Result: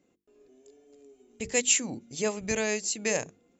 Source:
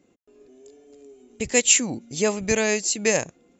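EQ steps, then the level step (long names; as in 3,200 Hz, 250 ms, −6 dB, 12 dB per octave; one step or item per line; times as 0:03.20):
mains-hum notches 50/100/150/200/250/300/350/400/450 Hz
−6.5 dB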